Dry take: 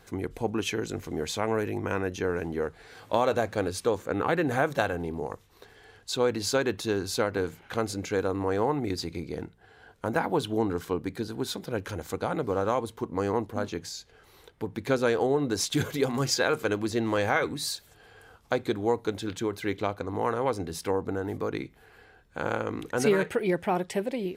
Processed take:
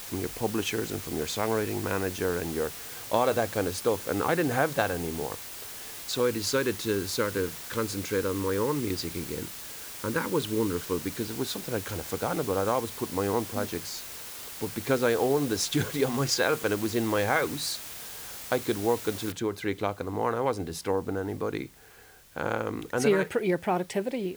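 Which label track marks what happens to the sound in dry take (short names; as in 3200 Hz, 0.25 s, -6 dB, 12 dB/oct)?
6.200000	11.200000	Butterworth band-stop 720 Hz, Q 1.9
19.320000	19.320000	noise floor step -41 dB -57 dB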